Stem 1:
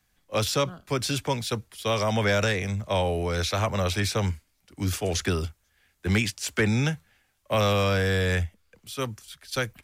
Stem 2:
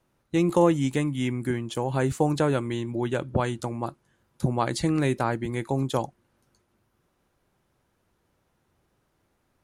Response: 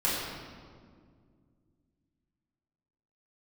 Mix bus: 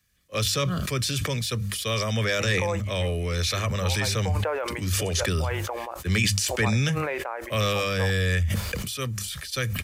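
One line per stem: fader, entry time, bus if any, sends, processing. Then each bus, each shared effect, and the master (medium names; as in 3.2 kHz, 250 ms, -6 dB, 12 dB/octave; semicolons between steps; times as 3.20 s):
+1.0 dB, 0.00 s, no send, peaking EQ 760 Hz -13 dB 1.1 oct; hum notches 50/100/150/200 Hz; comb 1.7 ms, depth 41%
-7.0 dB, 2.05 s, no send, Chebyshev band-pass 500–2500 Hz, order 3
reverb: none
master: high-pass 41 Hz; decay stretcher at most 22 dB/s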